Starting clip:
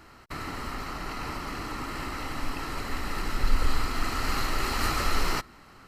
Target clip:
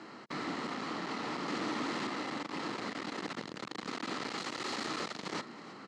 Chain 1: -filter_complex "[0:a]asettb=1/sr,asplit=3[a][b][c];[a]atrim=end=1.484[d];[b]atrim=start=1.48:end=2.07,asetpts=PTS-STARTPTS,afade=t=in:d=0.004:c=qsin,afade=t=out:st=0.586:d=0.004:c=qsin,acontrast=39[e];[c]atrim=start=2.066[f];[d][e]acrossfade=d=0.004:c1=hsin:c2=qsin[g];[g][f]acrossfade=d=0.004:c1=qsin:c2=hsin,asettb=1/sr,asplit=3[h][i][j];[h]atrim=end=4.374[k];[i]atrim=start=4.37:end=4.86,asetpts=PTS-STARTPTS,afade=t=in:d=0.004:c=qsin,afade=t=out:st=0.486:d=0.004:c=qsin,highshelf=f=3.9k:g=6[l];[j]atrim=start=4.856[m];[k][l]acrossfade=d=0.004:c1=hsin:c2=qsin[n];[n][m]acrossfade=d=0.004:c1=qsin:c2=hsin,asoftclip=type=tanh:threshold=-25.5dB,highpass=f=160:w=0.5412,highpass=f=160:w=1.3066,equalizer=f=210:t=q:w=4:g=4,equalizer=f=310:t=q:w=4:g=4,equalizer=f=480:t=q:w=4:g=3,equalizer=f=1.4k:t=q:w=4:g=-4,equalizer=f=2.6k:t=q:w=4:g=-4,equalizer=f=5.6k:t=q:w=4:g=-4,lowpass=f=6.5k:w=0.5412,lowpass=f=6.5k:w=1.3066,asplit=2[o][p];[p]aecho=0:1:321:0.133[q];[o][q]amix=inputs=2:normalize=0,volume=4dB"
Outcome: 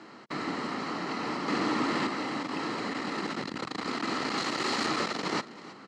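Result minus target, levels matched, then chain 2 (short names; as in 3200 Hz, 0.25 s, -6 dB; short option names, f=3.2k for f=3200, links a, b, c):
soft clip: distortion -6 dB
-filter_complex "[0:a]asettb=1/sr,asplit=3[a][b][c];[a]atrim=end=1.484[d];[b]atrim=start=1.48:end=2.07,asetpts=PTS-STARTPTS,afade=t=in:d=0.004:c=qsin,afade=t=out:st=0.586:d=0.004:c=qsin,acontrast=39[e];[c]atrim=start=2.066[f];[d][e]acrossfade=d=0.004:c1=hsin:c2=qsin[g];[g][f]acrossfade=d=0.004:c1=qsin:c2=hsin,asettb=1/sr,asplit=3[h][i][j];[h]atrim=end=4.374[k];[i]atrim=start=4.37:end=4.86,asetpts=PTS-STARTPTS,afade=t=in:d=0.004:c=qsin,afade=t=out:st=0.486:d=0.004:c=qsin,highshelf=f=3.9k:g=6[l];[j]atrim=start=4.856[m];[k][l]acrossfade=d=0.004:c1=hsin:c2=qsin[n];[n][m]acrossfade=d=0.004:c1=qsin:c2=hsin,asoftclip=type=tanh:threshold=-37dB,highpass=f=160:w=0.5412,highpass=f=160:w=1.3066,equalizer=f=210:t=q:w=4:g=4,equalizer=f=310:t=q:w=4:g=4,equalizer=f=480:t=q:w=4:g=3,equalizer=f=1.4k:t=q:w=4:g=-4,equalizer=f=2.6k:t=q:w=4:g=-4,equalizer=f=5.6k:t=q:w=4:g=-4,lowpass=f=6.5k:w=0.5412,lowpass=f=6.5k:w=1.3066,asplit=2[o][p];[p]aecho=0:1:321:0.133[q];[o][q]amix=inputs=2:normalize=0,volume=4dB"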